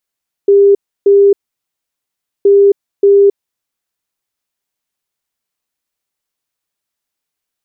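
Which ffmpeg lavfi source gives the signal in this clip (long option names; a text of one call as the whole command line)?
ffmpeg -f lavfi -i "aevalsrc='0.668*sin(2*PI*400*t)*clip(min(mod(mod(t,1.97),0.58),0.27-mod(mod(t,1.97),0.58))/0.005,0,1)*lt(mod(t,1.97),1.16)':duration=3.94:sample_rate=44100" out.wav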